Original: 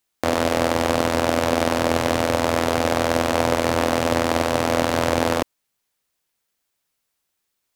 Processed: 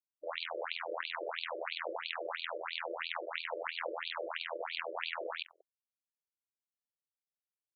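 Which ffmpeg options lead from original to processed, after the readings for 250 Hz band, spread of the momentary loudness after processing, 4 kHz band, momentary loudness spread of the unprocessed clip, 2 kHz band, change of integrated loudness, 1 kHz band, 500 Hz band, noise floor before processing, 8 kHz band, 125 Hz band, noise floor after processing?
−32.5 dB, 1 LU, −12.5 dB, 1 LU, −13.0 dB, −18.5 dB, −19.5 dB, −20.5 dB, −77 dBFS, below −40 dB, below −40 dB, below −85 dBFS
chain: -af "lowshelf=frequency=69:gain=5.5,aeval=exprs='(mod(1.88*val(0)+1,2)-1)/1.88':channel_layout=same,highpass=52,equalizer=frequency=620:width=0.79:gain=-7.5,bandreject=frequency=380:width=12,aecho=1:1:186:0.075,asoftclip=type=hard:threshold=-9.5dB,alimiter=limit=-18dB:level=0:latency=1:release=33,acrusher=bits=4:mix=0:aa=0.5,afftfilt=real='re*between(b*sr/1024,430*pow(3300/430,0.5+0.5*sin(2*PI*3*pts/sr))/1.41,430*pow(3300/430,0.5+0.5*sin(2*PI*3*pts/sr))*1.41)':imag='im*between(b*sr/1024,430*pow(3300/430,0.5+0.5*sin(2*PI*3*pts/sr))/1.41,430*pow(3300/430,0.5+0.5*sin(2*PI*3*pts/sr))*1.41)':win_size=1024:overlap=0.75,volume=1dB"

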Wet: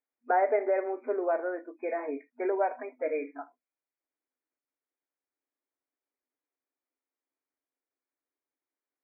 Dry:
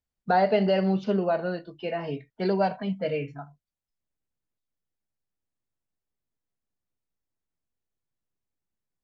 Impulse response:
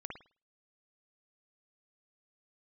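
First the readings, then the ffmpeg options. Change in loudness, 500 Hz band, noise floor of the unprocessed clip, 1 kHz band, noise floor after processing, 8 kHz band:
−4.0 dB, −2.5 dB, below −85 dBFS, −3.0 dB, below −85 dBFS, can't be measured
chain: -filter_complex "[0:a]asplit=2[link_01][link_02];[link_02]acompressor=threshold=-32dB:ratio=8,volume=-2dB[link_03];[link_01][link_03]amix=inputs=2:normalize=0,afftfilt=real='re*between(b*sr/4096,240,2500)':imag='im*between(b*sr/4096,240,2500)':win_size=4096:overlap=0.75,volume=-4.5dB"

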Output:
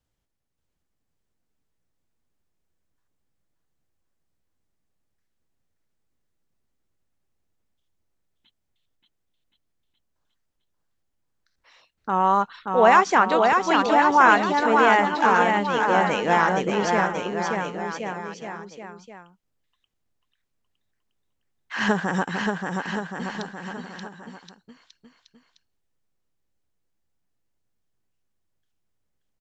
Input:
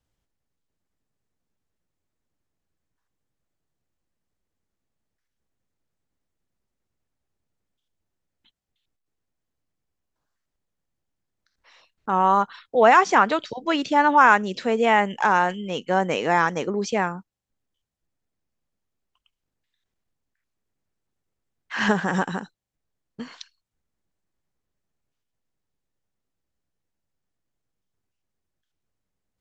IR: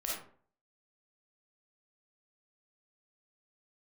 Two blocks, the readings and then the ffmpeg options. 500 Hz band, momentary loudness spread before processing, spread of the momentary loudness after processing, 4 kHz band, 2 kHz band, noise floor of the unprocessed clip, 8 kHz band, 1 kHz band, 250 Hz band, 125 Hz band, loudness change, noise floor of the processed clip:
+1.0 dB, 16 LU, 20 LU, +1.0 dB, +1.0 dB, −82 dBFS, can't be measured, +1.0 dB, +1.0 dB, +1.0 dB, 0.0 dB, −76 dBFS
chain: -af "aecho=1:1:580|1073|1492|1848|2151:0.631|0.398|0.251|0.158|0.1,volume=-1dB"

